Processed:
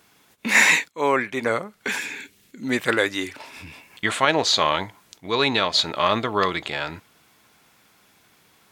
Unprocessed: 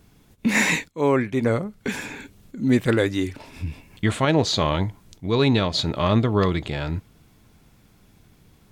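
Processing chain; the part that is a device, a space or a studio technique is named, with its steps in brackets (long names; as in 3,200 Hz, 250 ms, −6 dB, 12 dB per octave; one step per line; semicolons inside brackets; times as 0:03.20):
0:01.98–0:02.63: flat-topped bell 880 Hz −8.5 dB
filter by subtraction (in parallel: low-pass filter 1,300 Hz 12 dB per octave + polarity inversion)
on the sum: level +4 dB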